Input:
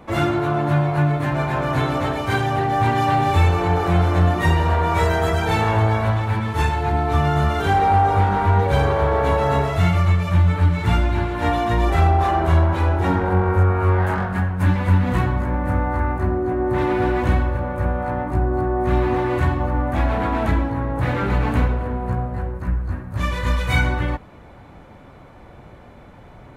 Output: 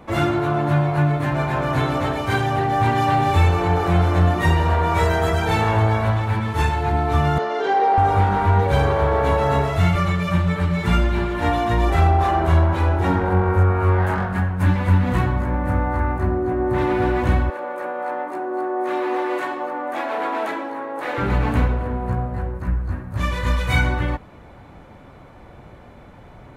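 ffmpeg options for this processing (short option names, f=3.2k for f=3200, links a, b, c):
-filter_complex "[0:a]asettb=1/sr,asplit=3[a][b][c];[a]atrim=end=7.384[d];[b]atrim=start=7.38:end=7.98,asetpts=PTS-STARTPTS,afade=t=in:d=0.004:c=qsin,afade=t=out:st=0.596:d=0.004:c=qsin,highpass=f=300:w=0.5412,highpass=f=300:w=1.3066,equalizer=f=300:t=q:w=4:g=-5,equalizer=f=430:t=q:w=4:g=6,equalizer=f=1.3k:t=q:w=4:g=-6,equalizer=f=2.5k:t=q:w=4:g=-6,equalizer=f=3.6k:t=q:w=4:g=-4,lowpass=f=5.5k:w=0.5412,lowpass=f=5.5k:w=1.3066[e];[c]atrim=start=7.976[f];[d][e]acrossfade=d=0.004:c1=hsin:c2=qsin[g];[g][f]acrossfade=d=0.004:c1=qsin:c2=hsin,asettb=1/sr,asplit=3[h][i][j];[h]atrim=end=9.954[k];[i]atrim=start=9.95:end=11.4,asetpts=PTS-STARTPTS,afade=t=in:d=0.004:c=qsin,afade=t=out:st=1.446:d=0.004:c=qsin,aecho=1:1:5.1:0.62,atrim=end_sample=63945[l];[j]atrim=start=11.396[m];[k][l]acrossfade=d=0.004:c1=hsin:c2=qsin[n];[n][m]acrossfade=d=0.004:c1=qsin:c2=hsin,asettb=1/sr,asplit=3[o][p][q];[o]atrim=end=17.504[r];[p]atrim=start=17.5:end=21.18,asetpts=PTS-STARTPTS,afade=t=in:d=0.004:c=qsin,afade=t=out:st=3.676:d=0.004:c=qsin,highpass=f=340:w=0.5412,highpass=f=340:w=1.3066[s];[q]atrim=start=21.176[t];[r][s]acrossfade=d=0.004:c1=hsin:c2=qsin[u];[u][t]acrossfade=d=0.004:c1=qsin:c2=hsin"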